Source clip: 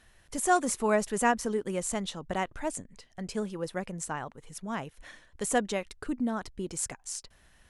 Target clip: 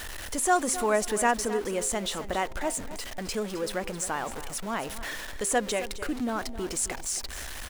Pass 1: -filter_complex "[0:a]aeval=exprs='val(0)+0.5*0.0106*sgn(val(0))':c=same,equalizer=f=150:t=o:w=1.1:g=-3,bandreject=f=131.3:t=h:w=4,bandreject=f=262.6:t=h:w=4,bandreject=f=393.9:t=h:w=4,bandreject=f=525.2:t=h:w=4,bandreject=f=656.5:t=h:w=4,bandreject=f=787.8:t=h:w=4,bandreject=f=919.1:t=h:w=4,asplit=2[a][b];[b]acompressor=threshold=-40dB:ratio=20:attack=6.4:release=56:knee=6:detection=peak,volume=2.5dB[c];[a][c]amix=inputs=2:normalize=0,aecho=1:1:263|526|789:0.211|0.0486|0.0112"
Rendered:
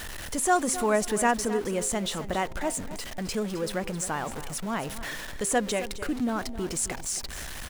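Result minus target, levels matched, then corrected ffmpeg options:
125 Hz band +4.5 dB
-filter_complex "[0:a]aeval=exprs='val(0)+0.5*0.0106*sgn(val(0))':c=same,equalizer=f=150:t=o:w=1.1:g=-11.5,bandreject=f=131.3:t=h:w=4,bandreject=f=262.6:t=h:w=4,bandreject=f=393.9:t=h:w=4,bandreject=f=525.2:t=h:w=4,bandreject=f=656.5:t=h:w=4,bandreject=f=787.8:t=h:w=4,bandreject=f=919.1:t=h:w=4,asplit=2[a][b];[b]acompressor=threshold=-40dB:ratio=20:attack=6.4:release=56:knee=6:detection=peak,volume=2.5dB[c];[a][c]amix=inputs=2:normalize=0,aecho=1:1:263|526|789:0.211|0.0486|0.0112"

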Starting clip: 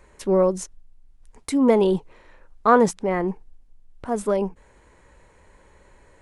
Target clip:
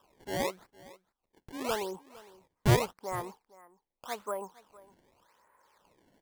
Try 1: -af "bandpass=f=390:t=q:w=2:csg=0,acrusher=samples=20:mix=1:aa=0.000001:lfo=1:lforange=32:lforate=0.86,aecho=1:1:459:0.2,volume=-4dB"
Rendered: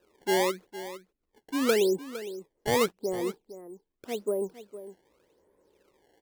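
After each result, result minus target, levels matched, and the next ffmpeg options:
echo-to-direct +6.5 dB; 500 Hz band +4.0 dB
-af "bandpass=f=390:t=q:w=2:csg=0,acrusher=samples=20:mix=1:aa=0.000001:lfo=1:lforange=32:lforate=0.86,aecho=1:1:459:0.0944,volume=-4dB"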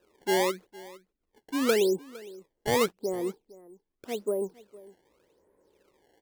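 500 Hz band +3.5 dB
-af "bandpass=f=1.1k:t=q:w=2:csg=0,acrusher=samples=20:mix=1:aa=0.000001:lfo=1:lforange=32:lforate=0.86,aecho=1:1:459:0.0944,volume=-4dB"

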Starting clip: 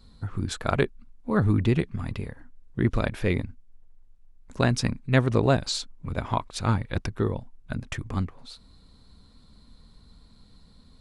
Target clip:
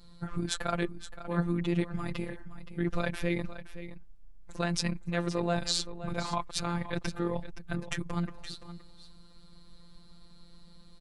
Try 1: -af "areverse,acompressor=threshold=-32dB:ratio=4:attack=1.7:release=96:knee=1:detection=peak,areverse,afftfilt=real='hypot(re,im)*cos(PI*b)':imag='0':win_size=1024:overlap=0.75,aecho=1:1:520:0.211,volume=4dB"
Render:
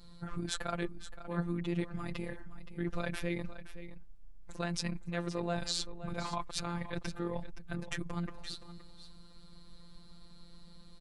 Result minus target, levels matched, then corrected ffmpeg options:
compressor: peak gain reduction +5.5 dB
-af "areverse,acompressor=threshold=-25dB:ratio=4:attack=1.7:release=96:knee=1:detection=peak,areverse,afftfilt=real='hypot(re,im)*cos(PI*b)':imag='0':win_size=1024:overlap=0.75,aecho=1:1:520:0.211,volume=4dB"

